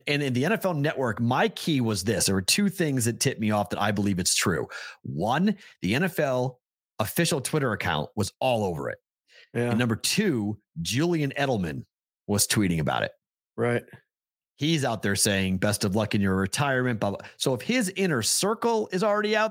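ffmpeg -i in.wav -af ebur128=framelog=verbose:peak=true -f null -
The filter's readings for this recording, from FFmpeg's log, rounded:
Integrated loudness:
  I:         -25.6 LUFS
  Threshold: -35.9 LUFS
Loudness range:
  LRA:         2.9 LU
  Threshold: -46.2 LUFS
  LRA low:   -27.5 LUFS
  LRA high:  -24.6 LUFS
True peak:
  Peak:       -7.6 dBFS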